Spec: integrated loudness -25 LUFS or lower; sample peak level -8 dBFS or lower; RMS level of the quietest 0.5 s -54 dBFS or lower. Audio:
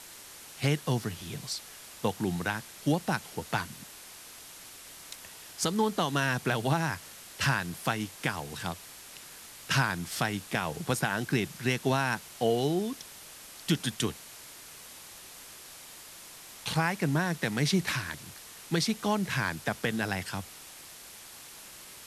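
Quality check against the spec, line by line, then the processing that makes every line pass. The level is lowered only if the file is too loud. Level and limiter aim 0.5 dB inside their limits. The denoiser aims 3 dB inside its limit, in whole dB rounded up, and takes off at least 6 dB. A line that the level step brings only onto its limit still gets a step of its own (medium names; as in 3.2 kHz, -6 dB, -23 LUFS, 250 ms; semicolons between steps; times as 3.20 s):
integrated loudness -30.5 LUFS: pass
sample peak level -14.0 dBFS: pass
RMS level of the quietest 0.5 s -48 dBFS: fail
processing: noise reduction 9 dB, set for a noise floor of -48 dBFS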